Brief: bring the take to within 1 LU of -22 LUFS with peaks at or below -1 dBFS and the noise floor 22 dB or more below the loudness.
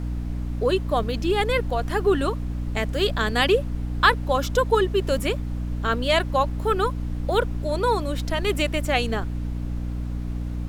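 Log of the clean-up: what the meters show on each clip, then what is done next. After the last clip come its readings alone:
hum 60 Hz; harmonics up to 300 Hz; hum level -26 dBFS; noise floor -29 dBFS; noise floor target -46 dBFS; loudness -24.0 LUFS; peak -4.5 dBFS; loudness target -22.0 LUFS
-> de-hum 60 Hz, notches 5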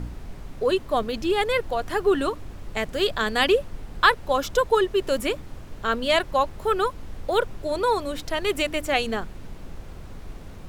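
hum none; noise floor -40 dBFS; noise floor target -46 dBFS
-> noise print and reduce 6 dB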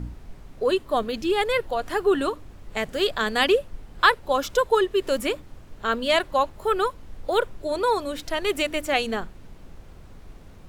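noise floor -46 dBFS; loudness -24.0 LUFS; peak -4.5 dBFS; loudness target -22.0 LUFS
-> gain +2 dB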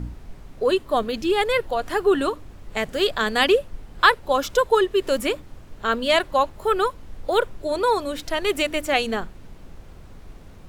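loudness -22.0 LUFS; peak -2.5 dBFS; noise floor -44 dBFS

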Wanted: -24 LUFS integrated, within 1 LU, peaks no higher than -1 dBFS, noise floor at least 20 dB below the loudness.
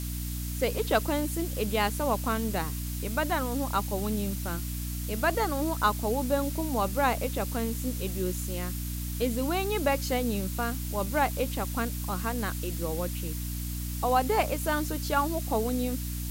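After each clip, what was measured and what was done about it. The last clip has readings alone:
hum 60 Hz; harmonics up to 300 Hz; hum level -32 dBFS; noise floor -34 dBFS; noise floor target -50 dBFS; loudness -29.5 LUFS; peak -10.0 dBFS; loudness target -24.0 LUFS
-> de-hum 60 Hz, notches 5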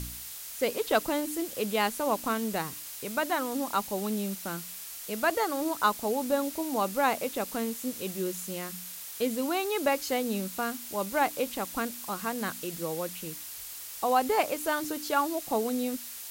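hum none; noise floor -42 dBFS; noise floor target -51 dBFS
-> noise print and reduce 9 dB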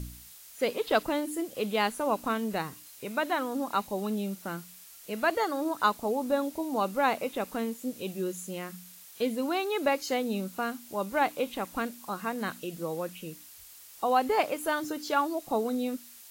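noise floor -51 dBFS; loudness -30.5 LUFS; peak -10.5 dBFS; loudness target -24.0 LUFS
-> gain +6.5 dB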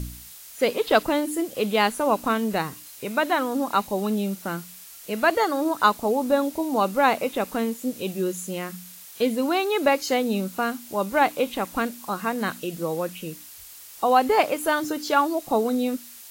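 loudness -24.0 LUFS; peak -4.0 dBFS; noise floor -44 dBFS

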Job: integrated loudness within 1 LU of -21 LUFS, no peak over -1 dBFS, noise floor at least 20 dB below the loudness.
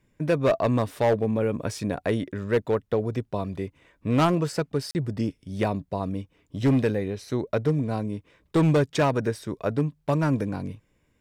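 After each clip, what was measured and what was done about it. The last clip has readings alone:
clipped 1.4%; flat tops at -15.5 dBFS; dropouts 1; longest dropout 39 ms; loudness -26.0 LUFS; peak -15.5 dBFS; loudness target -21.0 LUFS
-> clip repair -15.5 dBFS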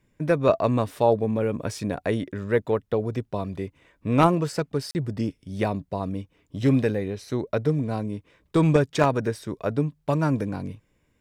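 clipped 0.0%; dropouts 1; longest dropout 39 ms
-> interpolate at 4.91, 39 ms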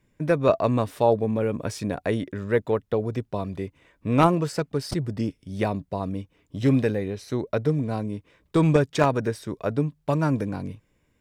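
dropouts 0; loudness -25.0 LUFS; peak -6.5 dBFS; loudness target -21.0 LUFS
-> gain +4 dB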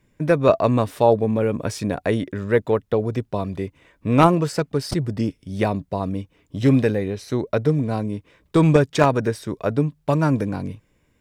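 loudness -21.0 LUFS; peak -2.5 dBFS; noise floor -65 dBFS

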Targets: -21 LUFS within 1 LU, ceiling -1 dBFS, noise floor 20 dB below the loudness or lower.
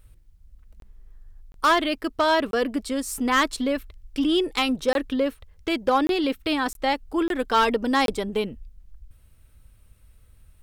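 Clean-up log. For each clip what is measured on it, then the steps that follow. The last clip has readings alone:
clipped 0.3%; flat tops at -13.0 dBFS; dropouts 8; longest dropout 22 ms; loudness -24.0 LUFS; peak -13.0 dBFS; loudness target -21.0 LUFS
-> clip repair -13 dBFS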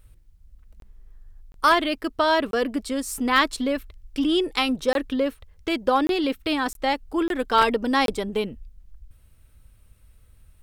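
clipped 0.0%; dropouts 8; longest dropout 22 ms
-> interpolate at 0.8/1.52/2.51/4.93/6.07/6.73/7.28/8.06, 22 ms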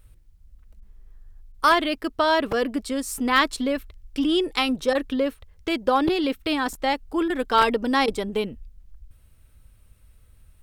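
dropouts 0; loudness -23.5 LUFS; peak -4.0 dBFS; loudness target -21.0 LUFS
-> gain +2.5 dB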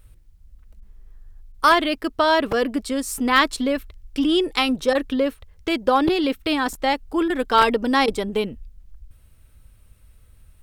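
loudness -21.0 LUFS; peak -1.5 dBFS; noise floor -53 dBFS

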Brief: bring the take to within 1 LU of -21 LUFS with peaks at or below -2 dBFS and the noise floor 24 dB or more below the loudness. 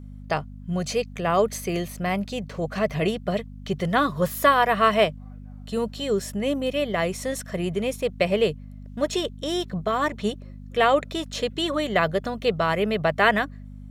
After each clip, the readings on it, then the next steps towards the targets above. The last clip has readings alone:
hum 50 Hz; harmonics up to 250 Hz; hum level -37 dBFS; loudness -24.5 LUFS; peak -4.5 dBFS; loudness target -21.0 LUFS
-> de-hum 50 Hz, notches 5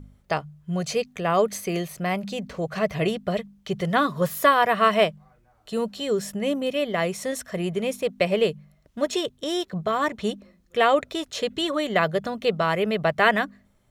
hum none; loudness -24.5 LUFS; peak -4.5 dBFS; loudness target -21.0 LUFS
-> gain +3.5 dB; limiter -2 dBFS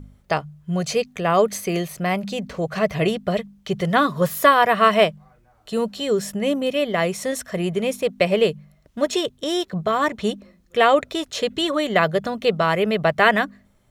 loudness -21.5 LUFS; peak -2.0 dBFS; noise floor -58 dBFS

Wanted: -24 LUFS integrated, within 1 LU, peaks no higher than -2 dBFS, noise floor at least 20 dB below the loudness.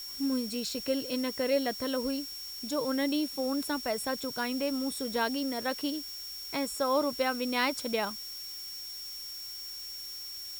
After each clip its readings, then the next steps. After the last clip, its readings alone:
steady tone 5500 Hz; tone level -40 dBFS; noise floor -42 dBFS; noise floor target -52 dBFS; loudness -32.0 LUFS; peak -14.0 dBFS; loudness target -24.0 LUFS
-> notch 5500 Hz, Q 30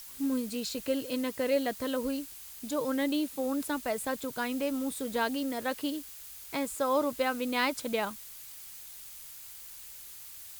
steady tone none; noise floor -47 dBFS; noise floor target -52 dBFS
-> denoiser 6 dB, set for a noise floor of -47 dBFS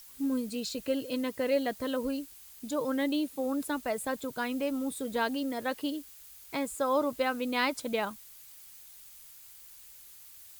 noise floor -52 dBFS; loudness -32.0 LUFS; peak -15.0 dBFS; loudness target -24.0 LUFS
-> gain +8 dB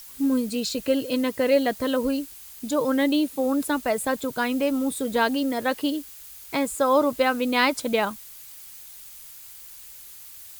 loudness -24.0 LUFS; peak -7.0 dBFS; noise floor -44 dBFS

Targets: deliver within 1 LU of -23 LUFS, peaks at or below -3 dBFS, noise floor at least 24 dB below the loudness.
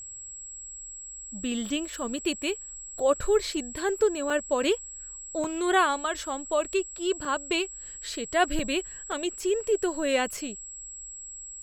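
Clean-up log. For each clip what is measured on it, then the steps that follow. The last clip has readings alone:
dropouts 6; longest dropout 3.0 ms; steady tone 7700 Hz; tone level -39 dBFS; loudness -29.0 LUFS; peak -10.0 dBFS; loudness target -23.0 LUFS
-> interpolate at 4.3/5.44/7.25/8.59/9.12/10.37, 3 ms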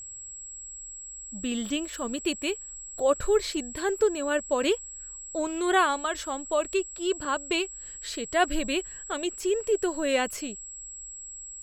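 dropouts 0; steady tone 7700 Hz; tone level -39 dBFS
-> notch 7700 Hz, Q 30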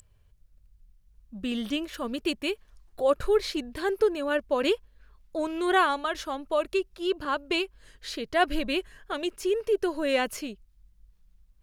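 steady tone none; loudness -28.5 LUFS; peak -9.5 dBFS; loudness target -23.0 LUFS
-> gain +5.5 dB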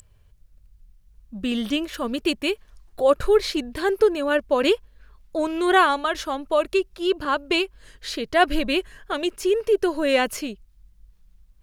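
loudness -23.0 LUFS; peak -4.0 dBFS; noise floor -57 dBFS

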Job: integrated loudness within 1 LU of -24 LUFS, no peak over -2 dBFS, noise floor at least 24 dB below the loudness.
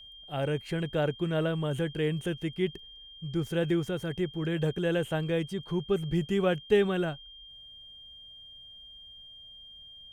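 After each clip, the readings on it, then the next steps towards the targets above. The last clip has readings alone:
steady tone 3200 Hz; tone level -47 dBFS; loudness -30.0 LUFS; peak -13.5 dBFS; loudness target -24.0 LUFS
-> notch 3200 Hz, Q 30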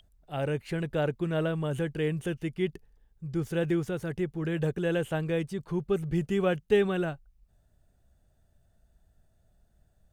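steady tone none; loudness -30.5 LUFS; peak -13.5 dBFS; loudness target -24.0 LUFS
-> gain +6.5 dB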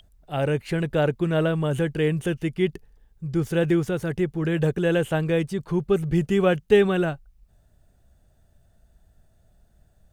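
loudness -24.0 LUFS; peak -7.0 dBFS; noise floor -61 dBFS

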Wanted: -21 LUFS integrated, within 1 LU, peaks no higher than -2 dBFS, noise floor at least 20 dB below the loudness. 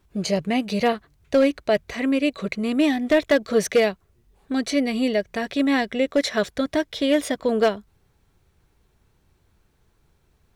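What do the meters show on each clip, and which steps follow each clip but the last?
clipped 0.4%; flat tops at -11.0 dBFS; loudness -22.5 LUFS; peak -11.0 dBFS; loudness target -21.0 LUFS
-> clip repair -11 dBFS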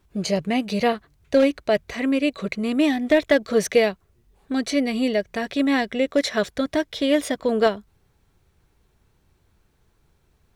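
clipped 0.0%; loudness -22.5 LUFS; peak -4.0 dBFS; loudness target -21.0 LUFS
-> gain +1.5 dB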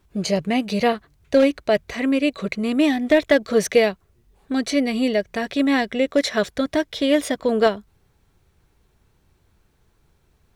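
loudness -21.0 LUFS; peak -2.5 dBFS; noise floor -63 dBFS

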